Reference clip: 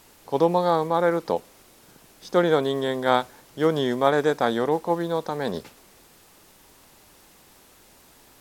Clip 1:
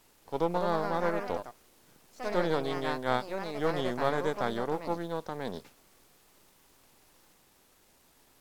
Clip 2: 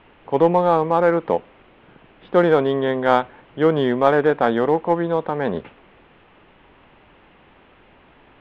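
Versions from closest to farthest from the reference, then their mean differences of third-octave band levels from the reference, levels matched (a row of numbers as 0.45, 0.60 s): 1, 2; 3.0, 5.0 dB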